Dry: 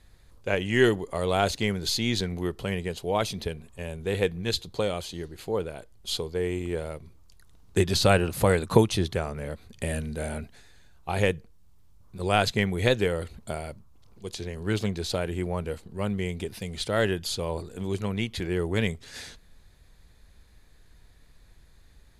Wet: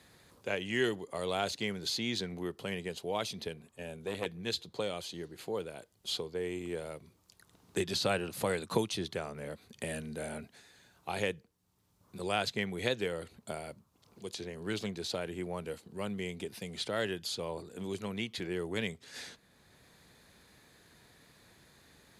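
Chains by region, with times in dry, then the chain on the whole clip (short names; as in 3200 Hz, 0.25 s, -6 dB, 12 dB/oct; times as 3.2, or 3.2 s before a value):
3.67–4.26 notch 1000 Hz, Q 20 + core saturation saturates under 810 Hz
whole clip: HPF 150 Hz 12 dB/oct; dynamic EQ 4200 Hz, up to +4 dB, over -41 dBFS, Q 0.75; three-band squash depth 40%; gain -8 dB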